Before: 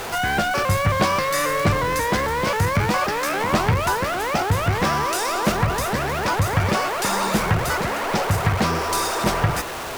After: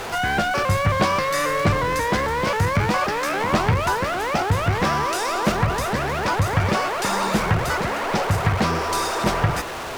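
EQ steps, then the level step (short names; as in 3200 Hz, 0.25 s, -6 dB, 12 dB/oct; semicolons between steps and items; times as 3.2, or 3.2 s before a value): high shelf 9300 Hz -8.5 dB; 0.0 dB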